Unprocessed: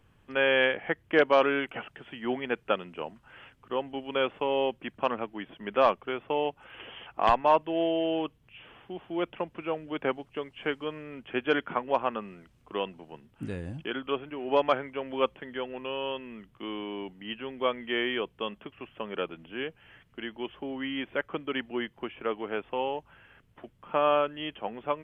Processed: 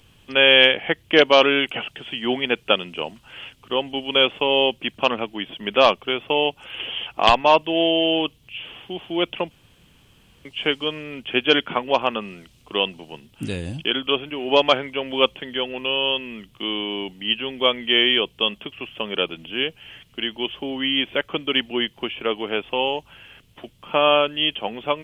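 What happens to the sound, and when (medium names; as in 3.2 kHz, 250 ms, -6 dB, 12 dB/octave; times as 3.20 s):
9.51–10.45 s: room tone
whole clip: resonant high shelf 2.3 kHz +9.5 dB, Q 1.5; trim +7.5 dB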